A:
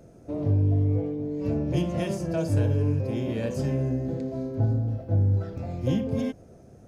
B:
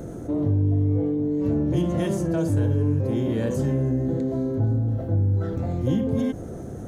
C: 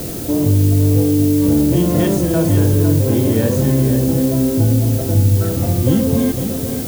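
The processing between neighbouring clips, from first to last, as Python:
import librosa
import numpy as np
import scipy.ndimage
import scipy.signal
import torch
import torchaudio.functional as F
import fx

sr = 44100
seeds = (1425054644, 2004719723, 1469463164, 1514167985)

y1 = fx.graphic_eq_31(x, sr, hz=(315, 630, 2500, 5000), db=(4, -5, -10, -11))
y1 = fx.env_flatten(y1, sr, amount_pct=50)
y2 = fx.dmg_noise_colour(y1, sr, seeds[0], colour='blue', level_db=-38.0)
y2 = y2 + 10.0 ** (-8.0 / 20.0) * np.pad(y2, (int(504 * sr / 1000.0), 0))[:len(y2)]
y2 = F.gain(torch.from_numpy(y2), 8.0).numpy()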